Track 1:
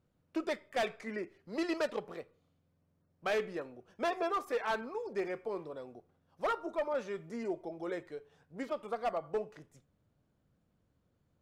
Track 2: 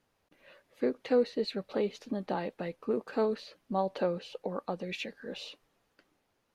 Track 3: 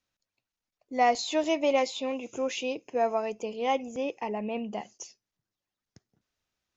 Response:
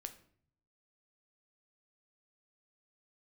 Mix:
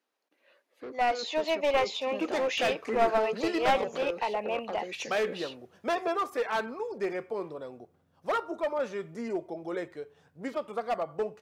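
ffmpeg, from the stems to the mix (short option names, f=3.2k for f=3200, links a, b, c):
-filter_complex "[0:a]adelay=1850,volume=-4.5dB[a];[1:a]highpass=f=260:w=0.5412,highpass=f=260:w=1.3066,asoftclip=type=tanh:threshold=-31dB,volume=-7dB[b];[2:a]acrossover=split=450 4800:gain=0.126 1 0.178[c][d][e];[c][d][e]amix=inputs=3:normalize=0,volume=-3dB[f];[a][b][f]amix=inputs=3:normalize=0,highpass=61,dynaudnorm=f=360:g=9:m=8.5dB,aeval=exprs='clip(val(0),-1,0.0631)':c=same"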